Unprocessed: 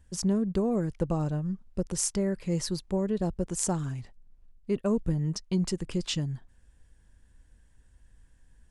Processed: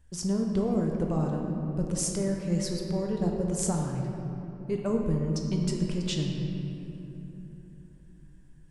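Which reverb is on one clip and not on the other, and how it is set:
rectangular room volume 190 cubic metres, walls hard, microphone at 0.44 metres
level −2.5 dB

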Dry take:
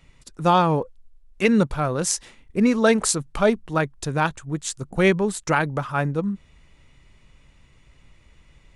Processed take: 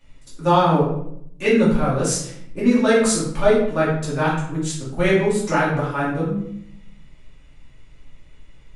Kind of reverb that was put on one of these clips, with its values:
rectangular room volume 150 cubic metres, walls mixed, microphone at 2.5 metres
level −7.5 dB

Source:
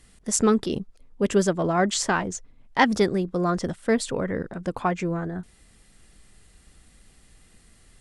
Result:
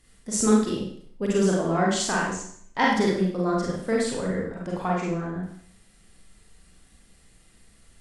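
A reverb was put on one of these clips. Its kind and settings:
four-comb reverb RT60 0.6 s, combs from 33 ms, DRR −3.5 dB
level −6 dB

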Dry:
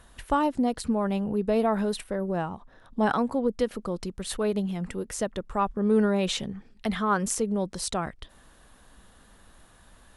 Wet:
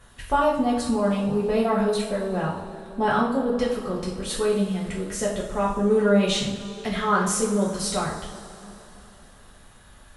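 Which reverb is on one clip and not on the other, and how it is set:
coupled-rooms reverb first 0.54 s, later 3.6 s, from −17 dB, DRR −6 dB
level −2.5 dB

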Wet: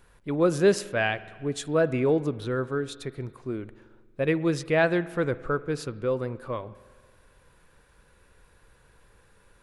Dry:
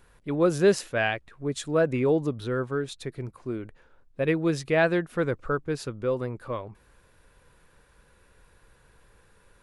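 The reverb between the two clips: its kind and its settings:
spring reverb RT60 1.7 s, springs 46 ms, chirp 30 ms, DRR 16.5 dB

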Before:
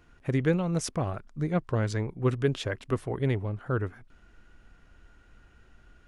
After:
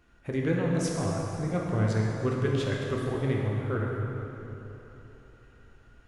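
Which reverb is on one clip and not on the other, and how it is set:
dense smooth reverb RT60 3.5 s, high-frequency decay 0.7×, DRR −2.5 dB
level −4 dB

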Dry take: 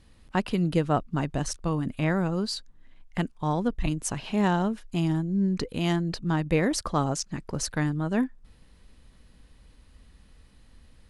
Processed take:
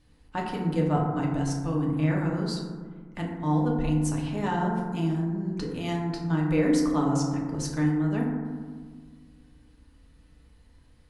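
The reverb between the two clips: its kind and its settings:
feedback delay network reverb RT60 1.6 s, low-frequency decay 1.4×, high-frequency decay 0.3×, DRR −2.5 dB
level −7 dB

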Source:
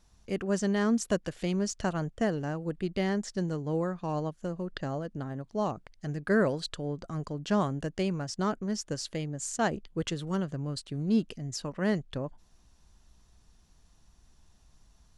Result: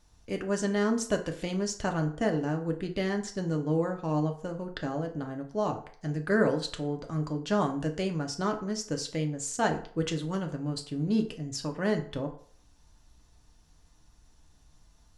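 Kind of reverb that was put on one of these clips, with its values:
feedback delay network reverb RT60 0.53 s, low-frequency decay 0.7×, high-frequency decay 0.65×, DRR 3.5 dB

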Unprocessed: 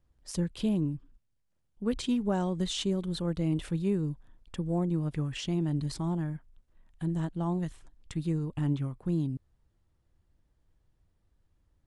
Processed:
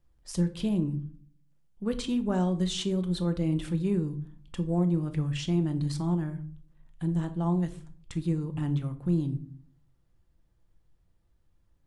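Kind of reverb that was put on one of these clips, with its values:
rectangular room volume 420 cubic metres, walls furnished, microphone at 0.81 metres

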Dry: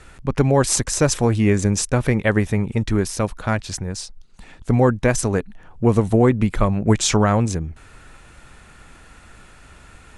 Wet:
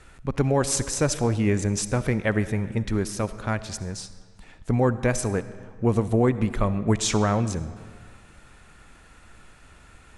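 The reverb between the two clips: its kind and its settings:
comb and all-pass reverb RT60 1.8 s, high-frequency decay 0.75×, pre-delay 25 ms, DRR 13.5 dB
level −5.5 dB

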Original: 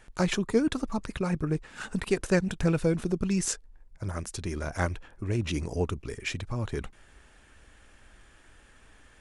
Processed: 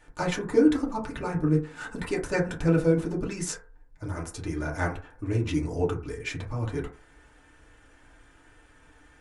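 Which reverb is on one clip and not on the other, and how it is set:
feedback delay network reverb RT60 0.39 s, low-frequency decay 0.8×, high-frequency decay 0.3×, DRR −4 dB
level −4.5 dB

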